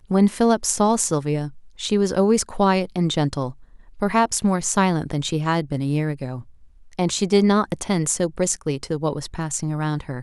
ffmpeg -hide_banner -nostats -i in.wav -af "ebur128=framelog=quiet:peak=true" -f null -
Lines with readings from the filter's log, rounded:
Integrated loudness:
  I:         -21.5 LUFS
  Threshold: -31.9 LUFS
Loudness range:
  LRA:         2.1 LU
  Threshold: -42.0 LUFS
  LRA low:   -22.8 LUFS
  LRA high:  -20.6 LUFS
True peak:
  Peak:       -2.0 dBFS